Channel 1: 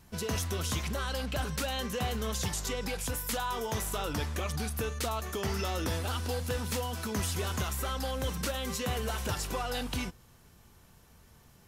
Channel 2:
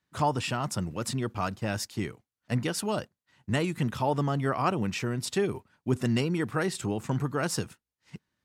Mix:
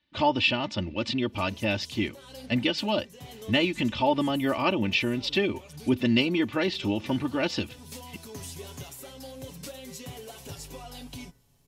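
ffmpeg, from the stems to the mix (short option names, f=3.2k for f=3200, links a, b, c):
-filter_complex "[0:a]aecho=1:1:7.2:0.66,bandreject=f=67.96:t=h:w=4,bandreject=f=135.92:t=h:w=4,bandreject=f=203.88:t=h:w=4,bandreject=f=271.84:t=h:w=4,bandreject=f=339.8:t=h:w=4,bandreject=f=407.76:t=h:w=4,bandreject=f=475.72:t=h:w=4,bandreject=f=543.68:t=h:w=4,bandreject=f=611.64:t=h:w=4,bandreject=f=679.6:t=h:w=4,bandreject=f=747.56:t=h:w=4,bandreject=f=815.52:t=h:w=4,bandreject=f=883.48:t=h:w=4,bandreject=f=951.44:t=h:w=4,bandreject=f=1.0194k:t=h:w=4,bandreject=f=1.08736k:t=h:w=4,bandreject=f=1.15532k:t=h:w=4,bandreject=f=1.22328k:t=h:w=4,bandreject=f=1.29124k:t=h:w=4,bandreject=f=1.3592k:t=h:w=4,bandreject=f=1.42716k:t=h:w=4,bandreject=f=1.49512k:t=h:w=4,bandreject=f=1.56308k:t=h:w=4,bandreject=f=1.63104k:t=h:w=4,bandreject=f=1.699k:t=h:w=4,bandreject=f=1.76696k:t=h:w=4,bandreject=f=1.83492k:t=h:w=4,bandreject=f=1.90288k:t=h:w=4,bandreject=f=1.97084k:t=h:w=4,bandreject=f=2.0388k:t=h:w=4,bandreject=f=2.10676k:t=h:w=4,adelay=1200,volume=-7dB[a];[1:a]lowpass=f=4.4k:w=0.5412,lowpass=f=4.4k:w=1.3066,equalizer=f=2.9k:t=o:w=1.5:g=10.5,aecho=1:1:3.4:0.74,volume=2dB,asplit=2[b][c];[c]apad=whole_len=568252[d];[a][d]sidechaincompress=threshold=-31dB:ratio=5:attack=16:release=454[e];[e][b]amix=inputs=2:normalize=0,equalizer=f=1.4k:t=o:w=0.99:g=-10.5"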